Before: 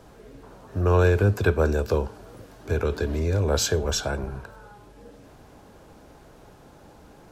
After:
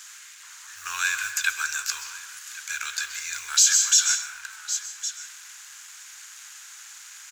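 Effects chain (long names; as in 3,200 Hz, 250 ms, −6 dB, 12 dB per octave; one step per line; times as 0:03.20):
mu-law and A-law mismatch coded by mu
inverse Chebyshev high-pass filter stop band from 620 Hz, stop band 50 dB
parametric band 6,900 Hz +13.5 dB 0.5 octaves
on a send: single-tap delay 1,105 ms −18.5 dB
on the sum: dense smooth reverb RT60 0.83 s, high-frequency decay 0.55×, pre-delay 115 ms, DRR 8.5 dB
boost into a limiter +13.5 dB
level −5.5 dB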